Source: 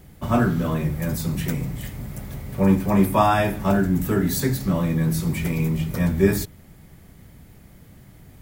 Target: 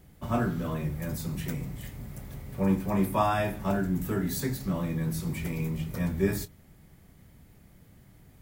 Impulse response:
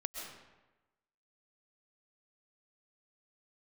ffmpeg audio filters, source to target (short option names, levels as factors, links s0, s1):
-filter_complex "[0:a]asplit=2[s0][s1];[1:a]atrim=start_sample=2205,atrim=end_sample=4410,adelay=27[s2];[s1][s2]afir=irnorm=-1:irlink=0,volume=0.251[s3];[s0][s3]amix=inputs=2:normalize=0,volume=0.398"